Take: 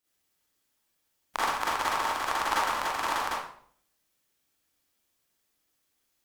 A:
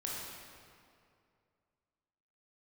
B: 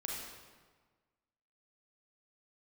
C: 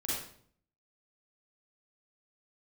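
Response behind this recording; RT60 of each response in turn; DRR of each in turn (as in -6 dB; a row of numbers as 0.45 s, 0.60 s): C; 2.4 s, 1.5 s, 0.60 s; -4.5 dB, -3.0 dB, -8.0 dB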